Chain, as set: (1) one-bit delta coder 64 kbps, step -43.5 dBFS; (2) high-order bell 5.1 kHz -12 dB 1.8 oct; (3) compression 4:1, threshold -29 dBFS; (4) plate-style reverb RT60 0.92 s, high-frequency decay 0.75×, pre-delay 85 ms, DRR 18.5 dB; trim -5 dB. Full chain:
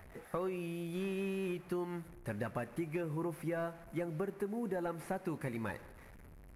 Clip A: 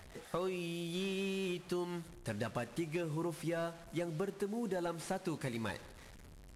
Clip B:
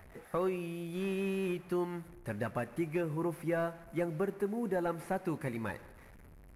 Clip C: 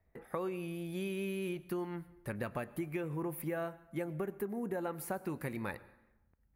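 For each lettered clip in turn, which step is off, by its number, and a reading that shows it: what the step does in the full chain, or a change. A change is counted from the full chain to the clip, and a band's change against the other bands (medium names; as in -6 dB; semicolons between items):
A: 2, 4 kHz band +10.5 dB; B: 3, mean gain reduction 2.0 dB; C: 1, 8 kHz band +5.0 dB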